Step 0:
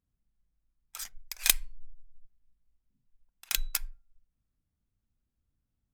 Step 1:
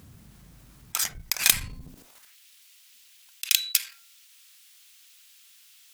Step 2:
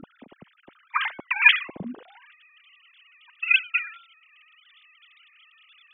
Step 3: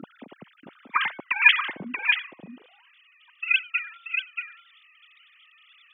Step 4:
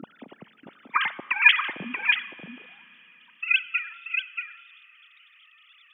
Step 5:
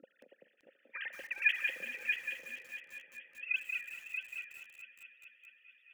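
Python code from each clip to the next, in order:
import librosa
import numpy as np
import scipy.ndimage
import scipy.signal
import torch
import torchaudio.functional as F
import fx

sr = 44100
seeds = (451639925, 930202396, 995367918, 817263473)

y1 = fx.leveller(x, sr, passes=1)
y1 = fx.filter_sweep_highpass(y1, sr, from_hz=98.0, to_hz=2900.0, start_s=1.78, end_s=2.36, q=1.3)
y1 = fx.env_flatten(y1, sr, amount_pct=50)
y1 = y1 * 10.0 ** (1.0 / 20.0)
y2 = fx.sine_speech(y1, sr)
y2 = fx.peak_eq(y2, sr, hz=210.0, db=3.5, octaves=1.9)
y2 = y2 * 10.0 ** (3.5 / 20.0)
y3 = scipy.signal.sosfilt(scipy.signal.butter(2, 140.0, 'highpass', fs=sr, output='sos'), y2)
y3 = fx.rider(y3, sr, range_db=4, speed_s=2.0)
y3 = y3 + 10.0 ** (-6.0 / 20.0) * np.pad(y3, (int(632 * sr / 1000.0), 0))[:len(y3)]
y4 = fx.rev_schroeder(y3, sr, rt60_s=3.7, comb_ms=28, drr_db=18.5)
y5 = fx.vowel_filter(y4, sr, vowel='e')
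y5 = fx.echo_heads(y5, sr, ms=215, heads='all three', feedback_pct=65, wet_db=-18.0)
y5 = fx.echo_crushed(y5, sr, ms=184, feedback_pct=35, bits=8, wet_db=-6.0)
y5 = y5 * 10.0 ** (-3.5 / 20.0)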